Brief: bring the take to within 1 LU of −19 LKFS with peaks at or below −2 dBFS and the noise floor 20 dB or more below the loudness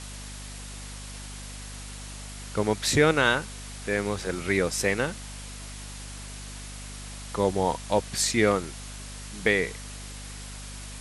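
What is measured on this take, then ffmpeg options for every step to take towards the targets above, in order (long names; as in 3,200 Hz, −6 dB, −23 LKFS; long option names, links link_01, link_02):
mains hum 50 Hz; hum harmonics up to 250 Hz; level of the hum −39 dBFS; background noise floor −40 dBFS; target noise floor −46 dBFS; integrated loudness −25.5 LKFS; sample peak −6.0 dBFS; target loudness −19.0 LKFS
→ -af "bandreject=frequency=50:width_type=h:width=4,bandreject=frequency=100:width_type=h:width=4,bandreject=frequency=150:width_type=h:width=4,bandreject=frequency=200:width_type=h:width=4,bandreject=frequency=250:width_type=h:width=4"
-af "afftdn=noise_reduction=6:noise_floor=-40"
-af "volume=6.5dB,alimiter=limit=-2dB:level=0:latency=1"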